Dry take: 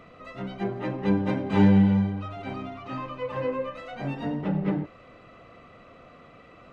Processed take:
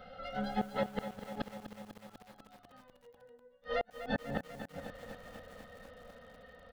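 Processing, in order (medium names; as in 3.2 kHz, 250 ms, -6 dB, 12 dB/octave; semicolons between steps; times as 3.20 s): Doppler pass-by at 2.73 s, 22 m/s, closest 4.7 m; comb 3.9 ms, depth 70%; in parallel at +2 dB: compression 12:1, threshold -44 dBFS, peak gain reduction 17 dB; on the sum: static phaser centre 1.6 kHz, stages 8; inverted gate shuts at -36 dBFS, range -38 dB; bit-crushed delay 247 ms, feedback 80%, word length 11-bit, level -10.5 dB; trim +15 dB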